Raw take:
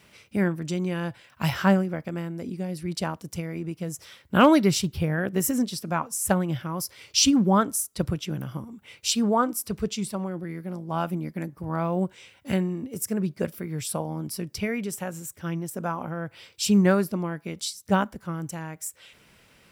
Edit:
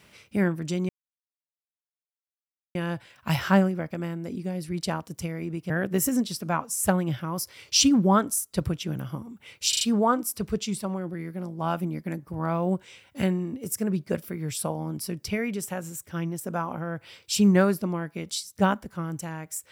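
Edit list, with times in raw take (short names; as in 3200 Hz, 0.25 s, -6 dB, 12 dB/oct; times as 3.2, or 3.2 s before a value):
0.89 insert silence 1.86 s
3.84–5.12 cut
9.11 stutter 0.04 s, 4 plays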